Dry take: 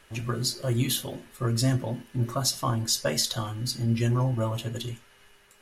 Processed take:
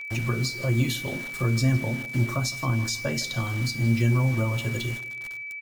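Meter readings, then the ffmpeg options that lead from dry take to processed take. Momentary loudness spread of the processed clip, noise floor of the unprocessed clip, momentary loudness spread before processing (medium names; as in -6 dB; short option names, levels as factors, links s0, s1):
8 LU, -58 dBFS, 8 LU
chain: -filter_complex "[0:a]equalizer=f=11000:t=o:w=0.39:g=-11.5,asplit=2[s0][s1];[s1]acompressor=threshold=0.0141:ratio=12,volume=1.12[s2];[s0][s2]amix=inputs=2:normalize=0,adynamicequalizer=threshold=0.00562:dfrequency=730:dqfactor=1.9:tfrequency=730:tqfactor=1.9:attack=5:release=100:ratio=0.375:range=2:mode=cutabove:tftype=bell,bandreject=f=3300:w=24,acrusher=bits=6:mix=0:aa=0.000001,asplit=2[s3][s4];[s4]adelay=159,lowpass=f=4400:p=1,volume=0.126,asplit=2[s5][s6];[s6]adelay=159,lowpass=f=4400:p=1,volume=0.42,asplit=2[s7][s8];[s8]adelay=159,lowpass=f=4400:p=1,volume=0.42[s9];[s3][s5][s7][s9]amix=inputs=4:normalize=0,acrossover=split=300[s10][s11];[s11]acompressor=threshold=0.0178:ratio=2[s12];[s10][s12]amix=inputs=2:normalize=0,aeval=exprs='val(0)+0.0178*sin(2*PI*2300*n/s)':c=same,volume=1.19"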